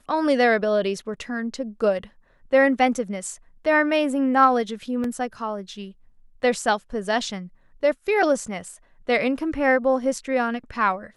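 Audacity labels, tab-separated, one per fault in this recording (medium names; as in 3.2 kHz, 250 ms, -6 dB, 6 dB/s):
5.040000	5.040000	dropout 3 ms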